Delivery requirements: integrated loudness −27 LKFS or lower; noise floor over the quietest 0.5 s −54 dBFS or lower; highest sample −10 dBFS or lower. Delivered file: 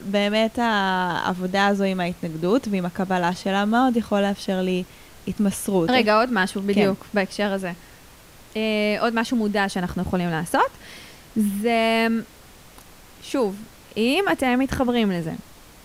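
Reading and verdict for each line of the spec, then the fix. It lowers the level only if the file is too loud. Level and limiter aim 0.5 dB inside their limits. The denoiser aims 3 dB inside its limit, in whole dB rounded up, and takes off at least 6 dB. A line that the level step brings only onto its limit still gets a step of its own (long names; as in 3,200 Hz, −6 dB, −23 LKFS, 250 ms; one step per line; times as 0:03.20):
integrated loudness −22.5 LKFS: out of spec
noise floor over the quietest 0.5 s −47 dBFS: out of spec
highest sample −6.0 dBFS: out of spec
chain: broadband denoise 6 dB, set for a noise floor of −47 dBFS
level −5 dB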